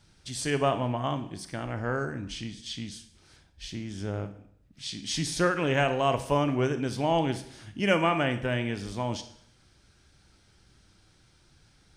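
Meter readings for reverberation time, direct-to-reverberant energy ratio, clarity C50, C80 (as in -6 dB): 0.65 s, 9.5 dB, 11.5 dB, 15.0 dB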